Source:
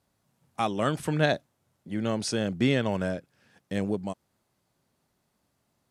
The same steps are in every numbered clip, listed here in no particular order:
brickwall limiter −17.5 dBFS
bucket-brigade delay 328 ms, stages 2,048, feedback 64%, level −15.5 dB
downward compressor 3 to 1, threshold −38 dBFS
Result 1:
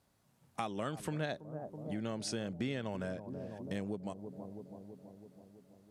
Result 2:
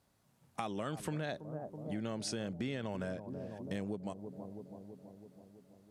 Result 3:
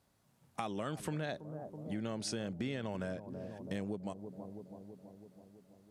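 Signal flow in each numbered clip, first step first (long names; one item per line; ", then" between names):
bucket-brigade delay, then downward compressor, then brickwall limiter
bucket-brigade delay, then brickwall limiter, then downward compressor
brickwall limiter, then bucket-brigade delay, then downward compressor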